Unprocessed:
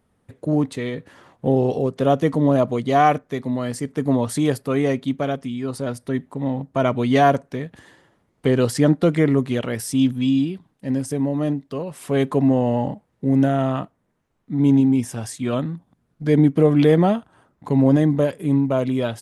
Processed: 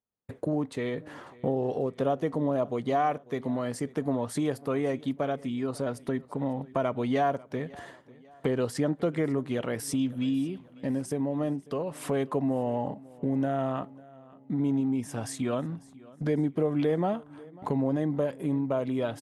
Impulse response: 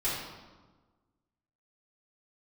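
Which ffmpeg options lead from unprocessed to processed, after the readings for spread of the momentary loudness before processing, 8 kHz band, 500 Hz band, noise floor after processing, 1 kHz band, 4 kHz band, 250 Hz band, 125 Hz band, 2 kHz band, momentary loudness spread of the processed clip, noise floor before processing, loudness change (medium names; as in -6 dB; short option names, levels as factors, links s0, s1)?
12 LU, -7.5 dB, -8.0 dB, -54 dBFS, -9.0 dB, -10.0 dB, -10.0 dB, -11.5 dB, -9.5 dB, 9 LU, -68 dBFS, -9.5 dB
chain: -filter_complex "[0:a]agate=range=0.0224:threshold=0.00562:ratio=3:detection=peak,equalizer=f=750:w=0.43:g=6.5,acompressor=threshold=0.0251:ratio=2.5,asplit=2[s0][s1];[s1]aecho=0:1:546|1092|1638:0.0794|0.0365|0.0168[s2];[s0][s2]amix=inputs=2:normalize=0"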